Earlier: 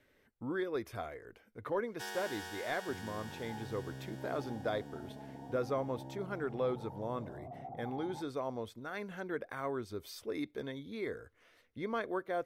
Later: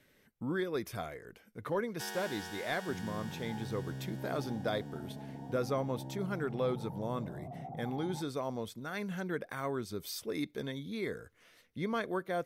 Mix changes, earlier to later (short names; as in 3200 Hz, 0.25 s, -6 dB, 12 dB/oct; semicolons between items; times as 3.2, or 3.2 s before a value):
speech: add high shelf 3300 Hz +10 dB; master: add bell 170 Hz +10.5 dB 0.71 oct